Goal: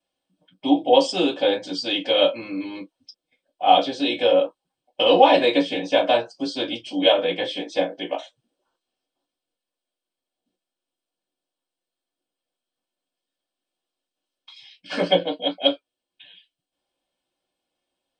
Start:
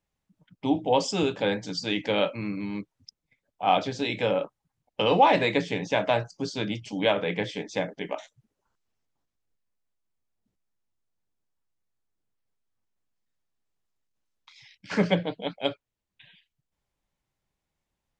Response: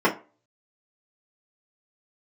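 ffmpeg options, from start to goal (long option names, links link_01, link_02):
-filter_complex "[0:a]highshelf=frequency=2300:gain=-10.5,aexciter=amount=6.8:drive=6.6:freq=2800[link_01];[1:a]atrim=start_sample=2205,afade=type=out:start_time=0.13:duration=0.01,atrim=end_sample=6174,asetrate=70560,aresample=44100[link_02];[link_01][link_02]afir=irnorm=-1:irlink=0,volume=-11dB"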